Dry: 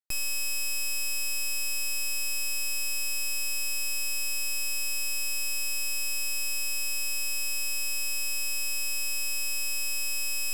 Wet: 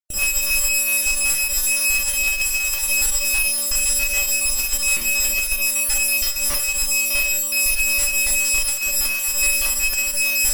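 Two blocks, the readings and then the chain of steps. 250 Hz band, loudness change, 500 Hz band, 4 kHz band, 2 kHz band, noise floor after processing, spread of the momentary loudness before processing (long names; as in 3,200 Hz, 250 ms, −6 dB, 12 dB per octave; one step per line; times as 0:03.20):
+14.0 dB, +11.0 dB, +16.0 dB, +7.5 dB, +12.0 dB, −24 dBFS, 0 LU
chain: time-frequency cells dropped at random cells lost 43%
parametric band 3,400 Hz −4 dB 0.57 octaves
in parallel at −8 dB: comparator with hysteresis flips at −41.5 dBFS
on the sum: four-comb reverb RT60 0.32 s, combs from 30 ms, DRR 2 dB
harmonic generator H 7 −21 dB, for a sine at −13 dBFS
level +8 dB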